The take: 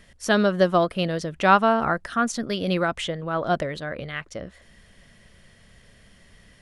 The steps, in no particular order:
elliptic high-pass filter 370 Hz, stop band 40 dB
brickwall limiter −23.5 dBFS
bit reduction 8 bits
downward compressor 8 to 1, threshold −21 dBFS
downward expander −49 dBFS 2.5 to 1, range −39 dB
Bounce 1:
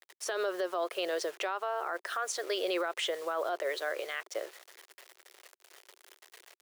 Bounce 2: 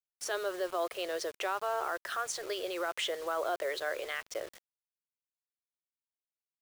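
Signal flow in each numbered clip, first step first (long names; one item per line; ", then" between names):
downward expander, then bit reduction, then elliptic high-pass filter, then downward compressor, then brickwall limiter
downward compressor, then brickwall limiter, then elliptic high-pass filter, then downward expander, then bit reduction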